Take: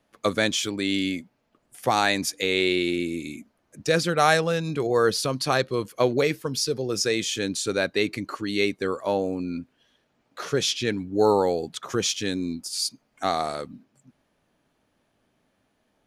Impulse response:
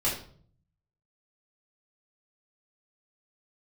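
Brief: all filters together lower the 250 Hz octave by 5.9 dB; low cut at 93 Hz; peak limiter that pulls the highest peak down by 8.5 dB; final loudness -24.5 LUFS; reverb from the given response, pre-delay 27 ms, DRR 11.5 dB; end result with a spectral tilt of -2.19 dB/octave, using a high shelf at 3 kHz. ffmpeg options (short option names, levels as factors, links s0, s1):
-filter_complex "[0:a]highpass=93,equalizer=f=250:t=o:g=-8.5,highshelf=f=3000:g=5,alimiter=limit=0.251:level=0:latency=1,asplit=2[s0][s1];[1:a]atrim=start_sample=2205,adelay=27[s2];[s1][s2]afir=irnorm=-1:irlink=0,volume=0.0944[s3];[s0][s3]amix=inputs=2:normalize=0,volume=1.12"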